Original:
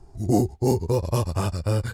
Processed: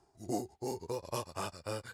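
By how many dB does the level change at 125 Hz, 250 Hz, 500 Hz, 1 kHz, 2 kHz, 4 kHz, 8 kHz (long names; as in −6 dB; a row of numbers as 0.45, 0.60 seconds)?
−23.0, −16.5, −13.5, −9.5, −8.0, −8.0, −9.0 decibels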